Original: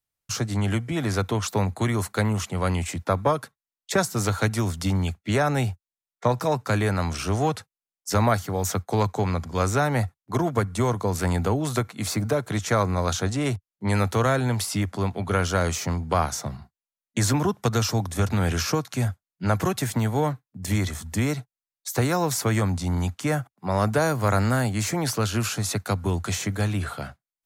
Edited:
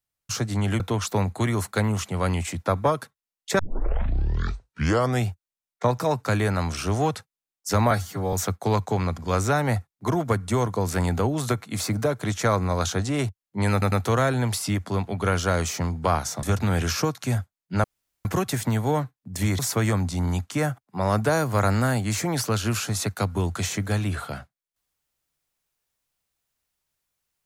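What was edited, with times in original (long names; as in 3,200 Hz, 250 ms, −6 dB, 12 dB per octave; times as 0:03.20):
0:00.80–0:01.21: remove
0:04.00: tape start 1.70 s
0:08.32–0:08.60: time-stretch 1.5×
0:13.99: stutter 0.10 s, 3 plays
0:16.50–0:18.13: remove
0:19.54: splice in room tone 0.41 s
0:20.88–0:22.28: remove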